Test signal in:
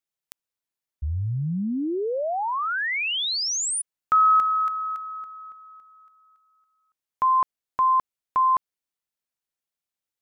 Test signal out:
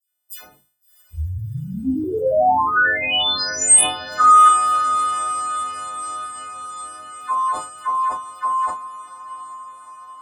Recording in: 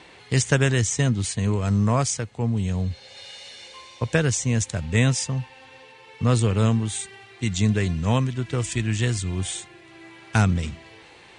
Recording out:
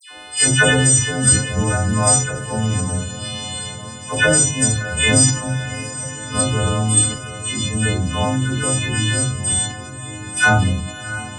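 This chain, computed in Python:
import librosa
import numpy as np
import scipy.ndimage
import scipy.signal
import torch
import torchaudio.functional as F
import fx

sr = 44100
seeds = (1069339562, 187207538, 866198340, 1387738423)

p1 = fx.freq_snap(x, sr, grid_st=3)
p2 = fx.low_shelf(p1, sr, hz=130.0, db=-5.5)
p3 = fx.level_steps(p2, sr, step_db=9)
p4 = scipy.signal.sosfilt(scipy.signal.butter(2, 52.0, 'highpass', fs=sr, output='sos'), p3)
p5 = fx.dispersion(p4, sr, late='lows', ms=103.0, hz=2100.0)
p6 = p5 + fx.echo_diffused(p5, sr, ms=686, feedback_pct=66, wet_db=-13.5, dry=0)
p7 = fx.room_shoebox(p6, sr, seeds[0], volume_m3=130.0, walls='furnished', distance_m=4.8)
p8 = fx.sustainer(p7, sr, db_per_s=100.0)
y = p8 * 10.0 ** (-4.0 / 20.0)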